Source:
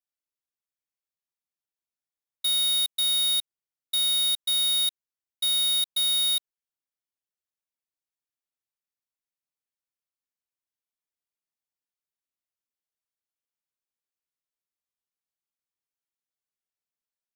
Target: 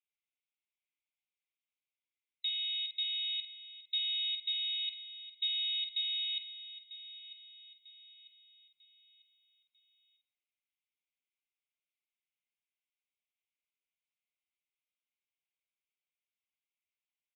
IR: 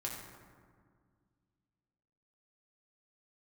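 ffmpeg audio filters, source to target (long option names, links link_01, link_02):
-filter_complex "[0:a]aresample=11025,asoftclip=type=hard:threshold=-30dB,aresample=44100,asuperpass=centerf=1600:order=4:qfactor=0.76,asplit=2[link_01][link_02];[link_02]adelay=48,volume=-8dB[link_03];[link_01][link_03]amix=inputs=2:normalize=0,aecho=1:1:946|1892|2838|3784:0.188|0.0772|0.0317|0.013,asplit=2[link_04][link_05];[1:a]atrim=start_sample=2205,lowpass=2400,adelay=75[link_06];[link_05][link_06]afir=irnorm=-1:irlink=0,volume=-13dB[link_07];[link_04][link_07]amix=inputs=2:normalize=0,afftfilt=real='re*eq(mod(floor(b*sr/1024/2000),2),1)':imag='im*eq(mod(floor(b*sr/1024/2000),2),1)':win_size=1024:overlap=0.75,volume=6dB"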